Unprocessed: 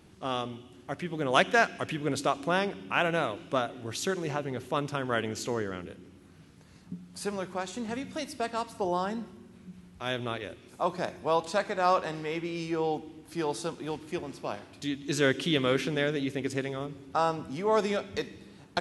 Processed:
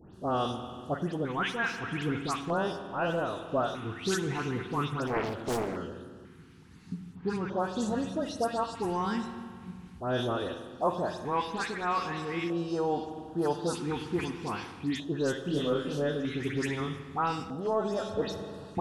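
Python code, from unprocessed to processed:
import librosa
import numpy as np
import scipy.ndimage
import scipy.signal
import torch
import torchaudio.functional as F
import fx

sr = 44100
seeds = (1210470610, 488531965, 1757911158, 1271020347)

p1 = fx.spacing_loss(x, sr, db_at_10k=24, at=(7.02, 7.46))
p2 = np.clip(p1, -10.0 ** (-23.0 / 20.0), 10.0 ** (-23.0 / 20.0))
p3 = p1 + F.gain(torch.from_numpy(p2), -10.0).numpy()
p4 = fx.high_shelf(p3, sr, hz=3400.0, db=-4.5)
p5 = fx.dispersion(p4, sr, late='highs', ms=147.0, hz=2500.0)
p6 = fx.doubler(p5, sr, ms=28.0, db=-3.0, at=(15.42, 16.1))
p7 = fx.rev_spring(p6, sr, rt60_s=1.9, pass_ms=(47,), chirp_ms=55, drr_db=8.5)
p8 = fx.filter_lfo_notch(p7, sr, shape='square', hz=0.4, low_hz=600.0, high_hz=2200.0, q=1.1)
p9 = fx.rider(p8, sr, range_db=5, speed_s=0.5)
p10 = fx.doppler_dist(p9, sr, depth_ms=0.91, at=(5.07, 5.77))
y = F.gain(torch.from_numpy(p10), -1.5).numpy()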